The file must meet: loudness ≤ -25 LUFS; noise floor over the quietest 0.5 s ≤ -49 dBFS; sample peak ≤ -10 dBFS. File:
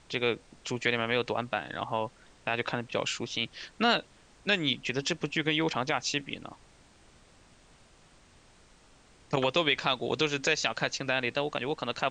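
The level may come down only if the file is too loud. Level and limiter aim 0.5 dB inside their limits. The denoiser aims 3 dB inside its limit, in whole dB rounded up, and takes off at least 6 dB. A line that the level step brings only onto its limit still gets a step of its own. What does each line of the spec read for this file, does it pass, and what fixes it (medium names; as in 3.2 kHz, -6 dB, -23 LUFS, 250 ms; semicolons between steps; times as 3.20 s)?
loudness -30.0 LUFS: pass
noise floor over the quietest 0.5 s -59 dBFS: pass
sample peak -10.5 dBFS: pass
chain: none needed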